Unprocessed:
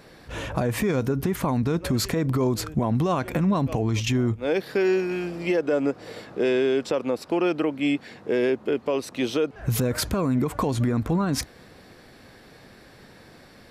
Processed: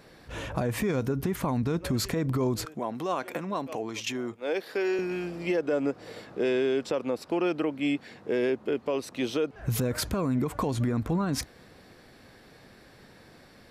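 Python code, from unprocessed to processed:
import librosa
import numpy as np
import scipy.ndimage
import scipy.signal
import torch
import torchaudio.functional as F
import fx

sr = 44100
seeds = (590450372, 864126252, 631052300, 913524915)

y = fx.highpass(x, sr, hz=350.0, slope=12, at=(2.65, 4.99))
y = y * librosa.db_to_amplitude(-4.0)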